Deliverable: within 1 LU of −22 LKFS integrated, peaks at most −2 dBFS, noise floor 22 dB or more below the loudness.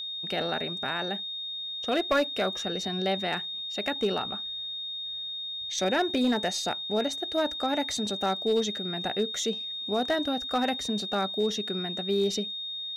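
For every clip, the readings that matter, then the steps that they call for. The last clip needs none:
share of clipped samples 0.3%; peaks flattened at −18.5 dBFS; interfering tone 3,700 Hz; level of the tone −33 dBFS; integrated loudness −29.0 LKFS; sample peak −18.5 dBFS; target loudness −22.0 LKFS
→ clipped peaks rebuilt −18.5 dBFS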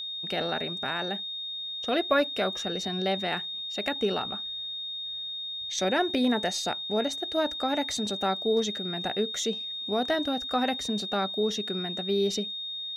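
share of clipped samples 0.0%; interfering tone 3,700 Hz; level of the tone −33 dBFS
→ notch filter 3,700 Hz, Q 30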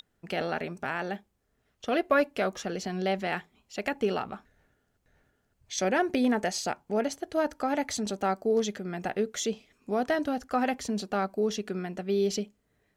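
interfering tone none found; integrated loudness −30.0 LKFS; sample peak −11.5 dBFS; target loudness −22.0 LKFS
→ level +8 dB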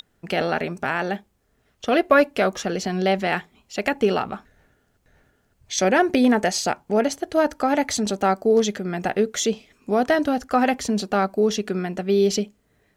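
integrated loudness −22.0 LKFS; sample peak −3.5 dBFS; background noise floor −66 dBFS

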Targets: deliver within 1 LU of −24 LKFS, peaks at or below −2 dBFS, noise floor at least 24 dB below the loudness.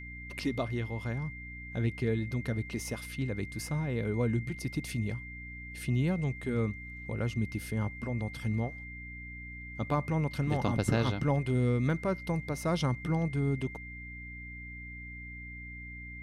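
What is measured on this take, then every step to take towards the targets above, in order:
mains hum 60 Hz; hum harmonics up to 300 Hz; level of the hum −45 dBFS; interfering tone 2,100 Hz; level of the tone −44 dBFS; integrated loudness −33.5 LKFS; sample peak −15.0 dBFS; target loudness −24.0 LKFS
→ mains-hum notches 60/120/180/240/300 Hz
notch filter 2,100 Hz, Q 30
level +9.5 dB

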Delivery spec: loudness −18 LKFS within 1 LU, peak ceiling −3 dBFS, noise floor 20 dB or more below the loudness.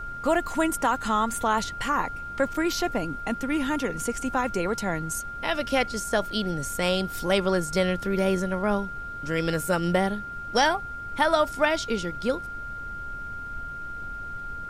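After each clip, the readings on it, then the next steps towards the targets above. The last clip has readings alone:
interfering tone 1,400 Hz; level of the tone −34 dBFS; background noise floor −36 dBFS; target noise floor −47 dBFS; integrated loudness −27.0 LKFS; sample peak −9.0 dBFS; target loudness −18.0 LKFS
→ notch filter 1,400 Hz, Q 30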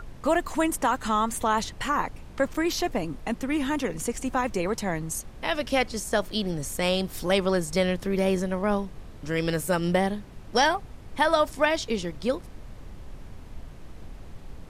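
interfering tone none found; background noise floor −44 dBFS; target noise floor −47 dBFS
→ noise reduction from a noise print 6 dB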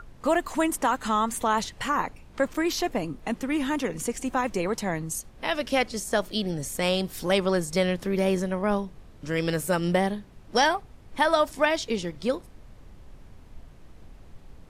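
background noise floor −50 dBFS; integrated loudness −26.5 LKFS; sample peak −9.5 dBFS; target loudness −18.0 LKFS
→ level +8.5 dB
brickwall limiter −3 dBFS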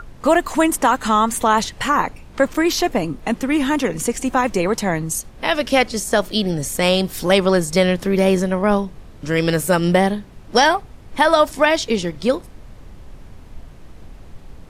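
integrated loudness −18.5 LKFS; sample peak −3.0 dBFS; background noise floor −41 dBFS

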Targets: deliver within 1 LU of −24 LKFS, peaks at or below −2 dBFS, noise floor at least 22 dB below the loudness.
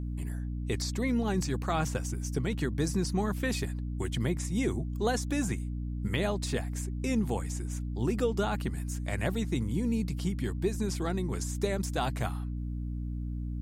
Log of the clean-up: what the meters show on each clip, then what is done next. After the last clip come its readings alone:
mains hum 60 Hz; hum harmonics up to 300 Hz; level of the hum −32 dBFS; integrated loudness −32.0 LKFS; sample peak −16.0 dBFS; target loudness −24.0 LKFS
→ hum removal 60 Hz, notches 5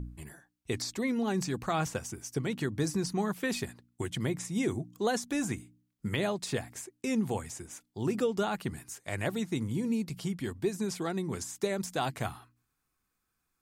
mains hum none found; integrated loudness −33.5 LKFS; sample peak −17.0 dBFS; target loudness −24.0 LKFS
→ level +9.5 dB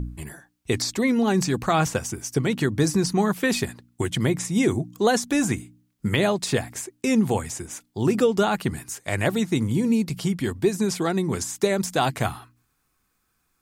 integrated loudness −24.0 LKFS; sample peak −7.5 dBFS; background noise floor −72 dBFS

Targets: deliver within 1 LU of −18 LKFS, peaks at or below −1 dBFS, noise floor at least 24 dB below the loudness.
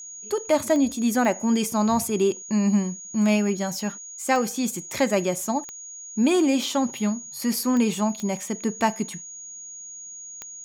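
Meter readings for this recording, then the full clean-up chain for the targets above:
number of clicks 7; interfering tone 6,700 Hz; level of the tone −37 dBFS; integrated loudness −24.0 LKFS; sample peak −8.0 dBFS; target loudness −18.0 LKFS
→ click removal
notch filter 6,700 Hz, Q 30
level +6 dB

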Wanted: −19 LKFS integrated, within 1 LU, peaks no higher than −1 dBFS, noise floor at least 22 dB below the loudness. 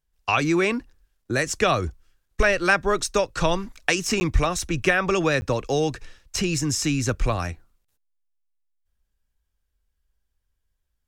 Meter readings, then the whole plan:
number of dropouts 2; longest dropout 10 ms; integrated loudness −23.5 LKFS; sample peak −3.0 dBFS; target loudness −19.0 LKFS
→ repair the gap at 0:04.20/0:05.41, 10 ms
level +4.5 dB
brickwall limiter −1 dBFS

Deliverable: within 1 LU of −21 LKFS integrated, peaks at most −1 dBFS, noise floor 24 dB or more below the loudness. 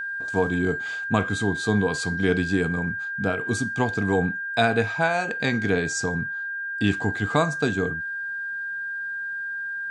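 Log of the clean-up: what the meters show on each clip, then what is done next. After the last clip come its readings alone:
interfering tone 1,600 Hz; level of the tone −28 dBFS; integrated loudness −25.0 LKFS; sample peak −6.0 dBFS; target loudness −21.0 LKFS
→ notch filter 1,600 Hz, Q 30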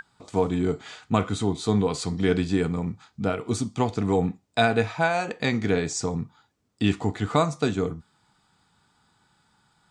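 interfering tone none found; integrated loudness −26.0 LKFS; sample peak −6.5 dBFS; target loudness −21.0 LKFS
→ level +5 dB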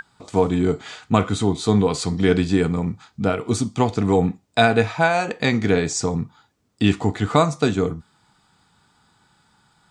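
integrated loudness −21.0 LKFS; sample peak −1.5 dBFS; background noise floor −64 dBFS

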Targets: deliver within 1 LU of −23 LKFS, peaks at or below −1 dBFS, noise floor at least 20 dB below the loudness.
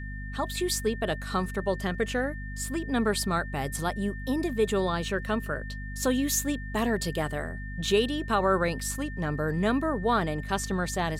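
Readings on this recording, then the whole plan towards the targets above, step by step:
mains hum 50 Hz; hum harmonics up to 250 Hz; level of the hum −34 dBFS; interfering tone 1,800 Hz; level of the tone −42 dBFS; integrated loudness −28.5 LKFS; sample peak −13.0 dBFS; target loudness −23.0 LKFS
→ hum removal 50 Hz, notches 5
notch filter 1,800 Hz, Q 30
level +5.5 dB

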